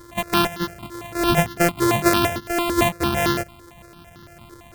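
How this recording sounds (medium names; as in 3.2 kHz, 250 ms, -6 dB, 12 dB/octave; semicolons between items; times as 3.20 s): a buzz of ramps at a fixed pitch in blocks of 128 samples; notches that jump at a steady rate 8.9 Hz 710–2400 Hz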